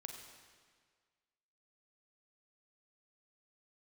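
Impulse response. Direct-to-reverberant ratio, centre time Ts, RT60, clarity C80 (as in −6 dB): 2.5 dB, 52 ms, 1.7 s, 5.5 dB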